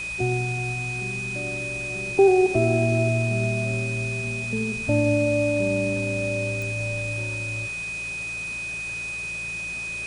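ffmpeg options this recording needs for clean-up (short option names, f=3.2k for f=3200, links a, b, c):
-af "adeclick=t=4,bandreject=f=56.4:t=h:w=4,bandreject=f=112.8:t=h:w=4,bandreject=f=169.2:t=h:w=4,bandreject=f=2.5k:w=30,afftdn=nr=30:nf=-32"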